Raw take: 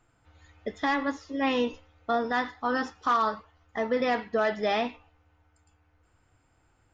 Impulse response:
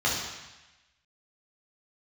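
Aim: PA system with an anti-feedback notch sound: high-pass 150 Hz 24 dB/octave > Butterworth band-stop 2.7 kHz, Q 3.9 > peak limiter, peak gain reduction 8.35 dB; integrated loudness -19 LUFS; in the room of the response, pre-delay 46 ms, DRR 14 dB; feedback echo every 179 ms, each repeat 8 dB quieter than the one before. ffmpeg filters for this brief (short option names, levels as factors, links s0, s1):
-filter_complex "[0:a]aecho=1:1:179|358|537|716|895:0.398|0.159|0.0637|0.0255|0.0102,asplit=2[s0][s1];[1:a]atrim=start_sample=2205,adelay=46[s2];[s1][s2]afir=irnorm=-1:irlink=0,volume=0.0447[s3];[s0][s3]amix=inputs=2:normalize=0,highpass=f=150:w=0.5412,highpass=f=150:w=1.3066,asuperstop=centerf=2700:order=8:qfactor=3.9,volume=4.73,alimiter=limit=0.355:level=0:latency=1"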